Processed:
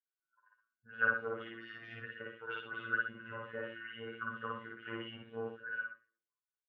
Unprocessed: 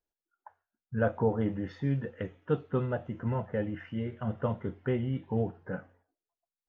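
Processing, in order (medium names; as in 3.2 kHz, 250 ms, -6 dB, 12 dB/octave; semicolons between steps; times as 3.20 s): coarse spectral quantiser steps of 15 dB; level-controlled noise filter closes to 1 kHz, open at -26 dBFS; elliptic band-stop 530–1100 Hz; Chebyshev shaper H 5 -22 dB, 7 -43 dB, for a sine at -15 dBFS; pre-echo 85 ms -12.5 dB; LFO band-pass sine 4.4 Hz 880–3800 Hz; small resonant body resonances 1.5/2.8 kHz, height 14 dB, ringing for 30 ms; robot voice 114 Hz; loudspeakers at several distances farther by 19 m 0 dB, 42 m -8 dB; trim +3 dB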